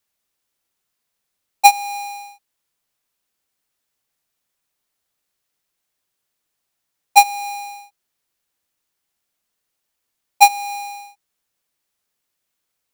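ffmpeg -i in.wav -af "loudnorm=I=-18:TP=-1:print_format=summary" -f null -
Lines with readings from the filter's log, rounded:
Input Integrated:    -15.9 LUFS
Input True Peak:      -1.2 dBTP
Input LRA:             0.0 LU
Input Threshold:     -28.5 LUFS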